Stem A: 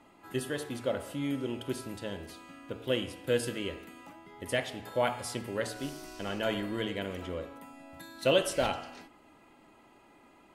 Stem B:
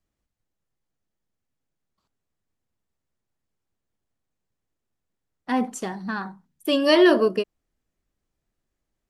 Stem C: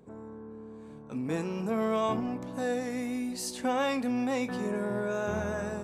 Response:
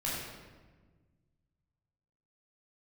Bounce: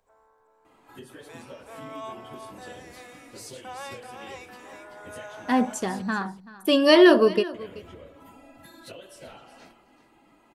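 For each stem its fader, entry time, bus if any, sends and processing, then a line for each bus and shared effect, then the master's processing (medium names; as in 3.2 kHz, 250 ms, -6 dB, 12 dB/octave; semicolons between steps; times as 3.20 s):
-1.0 dB, 0.65 s, muted 6.02–7.54 s, no send, echo send -14 dB, phase randomisation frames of 50 ms; compression 8:1, threshold -41 dBFS, peak gain reduction 20.5 dB
+1.5 dB, 0.00 s, no send, echo send -19 dB, none
-7.0 dB, 0.00 s, no send, echo send -6 dB, high-pass 630 Hz 24 dB/octave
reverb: none
echo: delay 382 ms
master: none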